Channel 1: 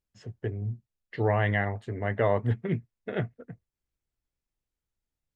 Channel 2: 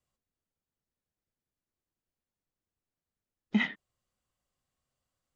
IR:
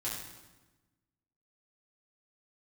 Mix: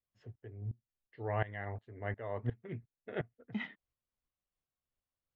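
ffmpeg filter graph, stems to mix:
-filter_complex "[0:a]equalizer=frequency=180:width_type=o:width=0.53:gain=-7,aeval=exprs='val(0)*pow(10,-19*if(lt(mod(-2.8*n/s,1),2*abs(-2.8)/1000),1-mod(-2.8*n/s,1)/(2*abs(-2.8)/1000),(mod(-2.8*n/s,1)-2*abs(-2.8)/1000)/(1-2*abs(-2.8)/1000))/20)':channel_layout=same,volume=-4.5dB[link_01];[1:a]volume=-11.5dB[link_02];[link_01][link_02]amix=inputs=2:normalize=0,lowpass=3900"

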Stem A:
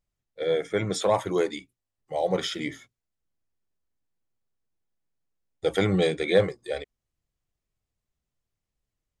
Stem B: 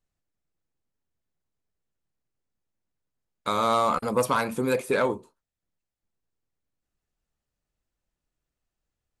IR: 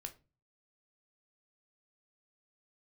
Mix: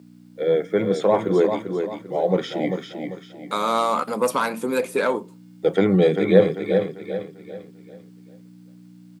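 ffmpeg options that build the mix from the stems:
-filter_complex "[0:a]aemphasis=mode=reproduction:type=riaa,aeval=exprs='val(0)+0.0126*(sin(2*PI*60*n/s)+sin(2*PI*2*60*n/s)/2+sin(2*PI*3*60*n/s)/3+sin(2*PI*4*60*n/s)/4+sin(2*PI*5*60*n/s)/5)':channel_layout=same,acrusher=bits=10:mix=0:aa=0.000001,volume=0dB,asplit=4[link_01][link_02][link_03][link_04];[link_02]volume=-6.5dB[link_05];[link_03]volume=-4.5dB[link_06];[1:a]adelay=50,volume=2dB,asplit=2[link_07][link_08];[link_08]volume=-8dB[link_09];[link_04]apad=whole_len=407950[link_10];[link_07][link_10]sidechaincompress=threshold=-39dB:ratio=8:attack=44:release=182[link_11];[2:a]atrim=start_sample=2205[link_12];[link_05][link_09]amix=inputs=2:normalize=0[link_13];[link_13][link_12]afir=irnorm=-1:irlink=0[link_14];[link_06]aecho=0:1:394|788|1182|1576|1970:1|0.38|0.144|0.0549|0.0209[link_15];[link_01][link_11][link_14][link_15]amix=inputs=4:normalize=0,highpass=frequency=180:width=0.5412,highpass=frequency=180:width=1.3066"

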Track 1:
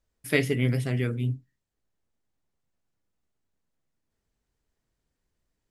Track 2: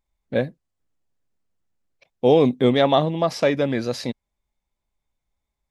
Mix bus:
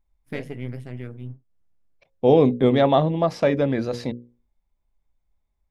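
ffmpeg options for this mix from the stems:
ffmpeg -i stem1.wav -i stem2.wav -filter_complex "[0:a]aeval=exprs='if(lt(val(0),0),0.447*val(0),val(0))':channel_layout=same,agate=range=-26dB:threshold=-40dB:ratio=16:detection=peak,volume=-6dB,asplit=2[link_01][link_02];[1:a]lowshelf=frequency=73:gain=10.5,bandreject=frequency=60:width_type=h:width=6,bandreject=frequency=120:width_type=h:width=6,bandreject=frequency=180:width_type=h:width=6,bandreject=frequency=240:width_type=h:width=6,bandreject=frequency=300:width_type=h:width=6,bandreject=frequency=360:width_type=h:width=6,bandreject=frequency=420:width_type=h:width=6,bandreject=frequency=480:width_type=h:width=6,bandreject=frequency=540:width_type=h:width=6,volume=0.5dB[link_03];[link_02]apad=whole_len=251415[link_04];[link_03][link_04]sidechaincompress=threshold=-44dB:ratio=8:attack=47:release=316[link_05];[link_01][link_05]amix=inputs=2:normalize=0,highshelf=frequency=2400:gain=-9.5" out.wav

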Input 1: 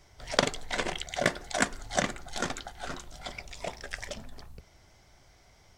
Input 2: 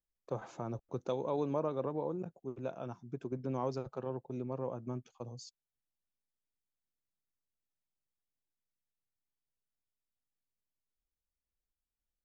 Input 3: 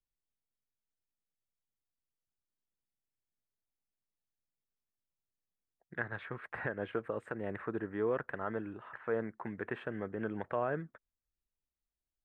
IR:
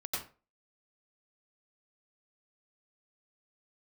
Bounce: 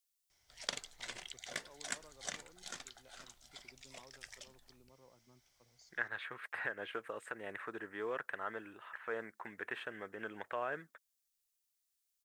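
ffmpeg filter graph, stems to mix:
-filter_complex "[0:a]adelay=300,volume=-16.5dB[link_01];[1:a]adelay=400,volume=-19.5dB[link_02];[2:a]bass=frequency=250:gain=-9,treble=frequency=4000:gain=6,volume=-0.5dB[link_03];[link_01][link_02][link_03]amix=inputs=3:normalize=0,tiltshelf=frequency=1400:gain=-8"

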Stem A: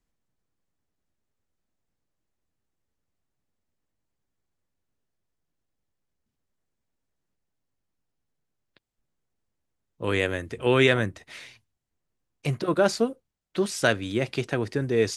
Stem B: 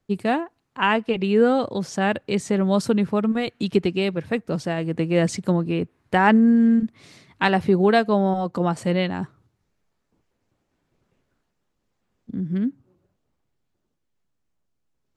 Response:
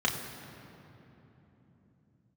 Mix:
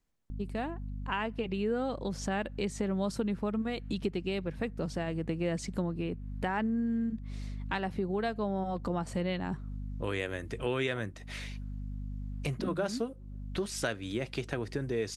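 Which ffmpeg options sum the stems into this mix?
-filter_complex "[0:a]volume=0dB,asplit=2[link_01][link_02];[1:a]dynaudnorm=framelen=220:gausssize=7:maxgain=12dB,aeval=exprs='val(0)+0.0398*(sin(2*PI*50*n/s)+sin(2*PI*2*50*n/s)/2+sin(2*PI*3*50*n/s)/3+sin(2*PI*4*50*n/s)/4+sin(2*PI*5*50*n/s)/5)':channel_layout=same,adelay=300,volume=-8dB[link_03];[link_02]apad=whole_len=682101[link_04];[link_03][link_04]sidechaincompress=threshold=-25dB:ratio=8:attack=42:release=1030[link_05];[link_01][link_05]amix=inputs=2:normalize=0,acompressor=threshold=-34dB:ratio=2.5"

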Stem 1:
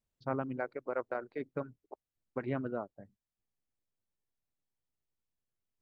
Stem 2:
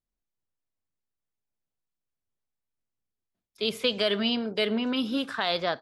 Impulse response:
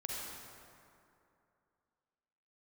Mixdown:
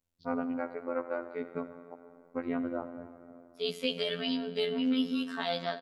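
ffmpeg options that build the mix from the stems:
-filter_complex "[0:a]bandreject=frequency=1700:width=12,volume=2dB,asplit=2[link_01][link_02];[link_02]volume=-7.5dB[link_03];[1:a]aecho=1:1:4.4:0.93,volume=-8dB,asplit=2[link_04][link_05];[link_05]volume=-11dB[link_06];[2:a]atrim=start_sample=2205[link_07];[link_03][link_06]amix=inputs=2:normalize=0[link_08];[link_08][link_07]afir=irnorm=-1:irlink=0[link_09];[link_01][link_04][link_09]amix=inputs=3:normalize=0,equalizer=frequency=240:width_type=o:width=0.33:gain=3.5,afftfilt=real='hypot(re,im)*cos(PI*b)':imag='0':win_size=2048:overlap=0.75"

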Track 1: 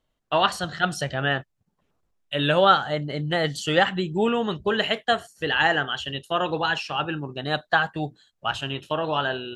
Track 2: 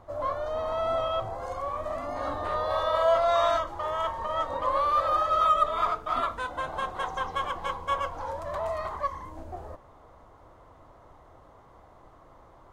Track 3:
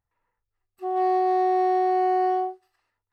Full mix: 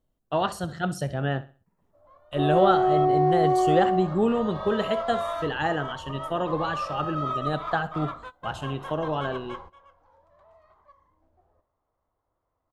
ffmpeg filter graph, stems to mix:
ffmpeg -i stem1.wav -i stem2.wav -i stem3.wav -filter_complex "[0:a]equalizer=frequency=2700:width=0.37:gain=-14,volume=2dB,asplit=3[link_01][link_02][link_03];[link_02]volume=-17dB[link_04];[1:a]bandreject=frequency=69.55:width_type=h:width=4,bandreject=frequency=139.1:width_type=h:width=4,bandreject=frequency=208.65:width_type=h:width=4,bandreject=frequency=278.2:width_type=h:width=4,bandreject=frequency=347.75:width_type=h:width=4,bandreject=frequency=417.3:width_type=h:width=4,bandreject=frequency=486.85:width_type=h:width=4,bandreject=frequency=556.4:width_type=h:width=4,bandreject=frequency=625.95:width_type=h:width=4,bandreject=frequency=695.5:width_type=h:width=4,bandreject=frequency=765.05:width_type=h:width=4,bandreject=frequency=834.6:width_type=h:width=4,bandreject=frequency=904.15:width_type=h:width=4,bandreject=frequency=973.7:width_type=h:width=4,bandreject=frequency=1043.25:width_type=h:width=4,bandreject=frequency=1112.8:width_type=h:width=4,bandreject=frequency=1182.35:width_type=h:width=4,bandreject=frequency=1251.9:width_type=h:width=4,bandreject=frequency=1321.45:width_type=h:width=4,bandreject=frequency=1391:width_type=h:width=4,bandreject=frequency=1460.55:width_type=h:width=4,bandreject=frequency=1530.1:width_type=h:width=4,bandreject=frequency=1599.65:width_type=h:width=4,bandreject=frequency=1669.2:width_type=h:width=4,bandreject=frequency=1738.75:width_type=h:width=4,bandreject=frequency=1808.3:width_type=h:width=4,bandreject=frequency=1877.85:width_type=h:width=4,bandreject=frequency=1947.4:width_type=h:width=4,bandreject=frequency=2016.95:width_type=h:width=4,bandreject=frequency=2086.5:width_type=h:width=4,bandreject=frequency=2156.05:width_type=h:width=4,adynamicsmooth=sensitivity=2.5:basefreq=5400,adelay=1850,volume=-6.5dB[link_05];[2:a]equalizer=frequency=390:width=0.3:gain=13,adelay=1550,volume=-11.5dB[link_06];[link_03]apad=whole_len=642749[link_07];[link_05][link_07]sidechaingate=range=-19dB:threshold=-55dB:ratio=16:detection=peak[link_08];[link_04]aecho=0:1:65|130|195|260:1|0.3|0.09|0.027[link_09];[link_01][link_08][link_06][link_09]amix=inputs=4:normalize=0" out.wav

